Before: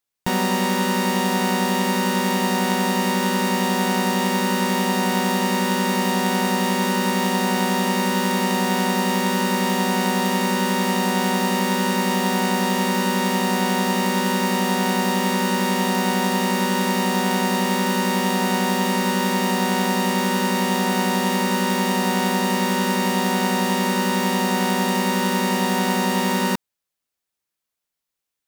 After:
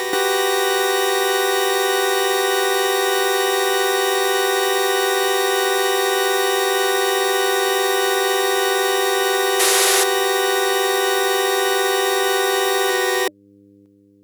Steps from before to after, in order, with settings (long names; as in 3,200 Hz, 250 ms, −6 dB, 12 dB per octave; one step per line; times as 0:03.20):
mains hum 50 Hz, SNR 35 dB
wrong playback speed 7.5 ips tape played at 15 ips
hollow resonant body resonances 310/590 Hz, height 9 dB, ringing for 90 ms
on a send: backwards echo 380 ms −5.5 dB
on the sum: sound drawn into the spectrogram noise, 0:09.59–0:10.04, 320–12,000 Hz −19 dBFS
in parallel at −1 dB: downward compressor, threshold −32 dBFS, peak gain reduction 17 dB
on the sum: high-pass filter 190 Hz 12 dB per octave